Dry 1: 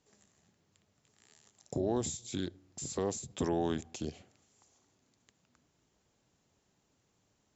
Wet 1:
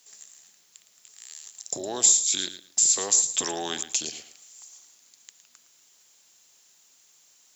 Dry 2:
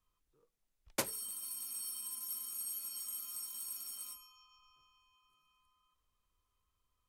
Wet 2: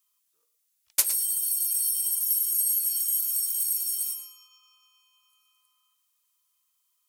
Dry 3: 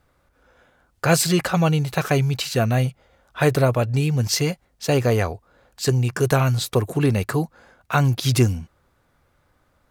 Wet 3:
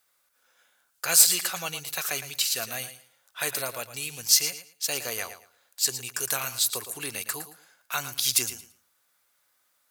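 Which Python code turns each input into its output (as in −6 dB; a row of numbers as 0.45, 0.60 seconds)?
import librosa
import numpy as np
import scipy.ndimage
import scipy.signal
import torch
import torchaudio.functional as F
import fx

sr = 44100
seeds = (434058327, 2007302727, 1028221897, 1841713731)

p1 = np.diff(x, prepend=0.0)
p2 = p1 + fx.echo_feedback(p1, sr, ms=112, feedback_pct=20, wet_db=-12.0, dry=0)
y = p2 * 10.0 ** (-30 / 20.0) / np.sqrt(np.mean(np.square(p2)))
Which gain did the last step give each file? +22.5, +14.0, +5.5 decibels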